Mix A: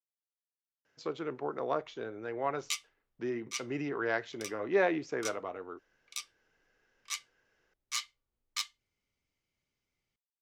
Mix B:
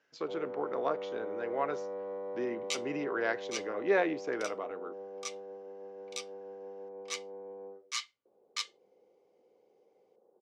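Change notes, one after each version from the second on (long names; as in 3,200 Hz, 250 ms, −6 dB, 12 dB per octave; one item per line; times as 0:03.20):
speech: entry −0.85 s
first sound: unmuted
master: add band-pass filter 190–7,100 Hz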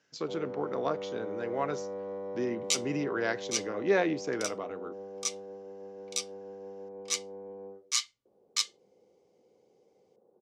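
master: add bass and treble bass +12 dB, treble +12 dB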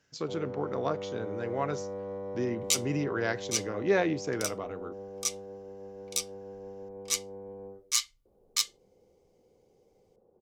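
master: remove band-pass filter 190–7,100 Hz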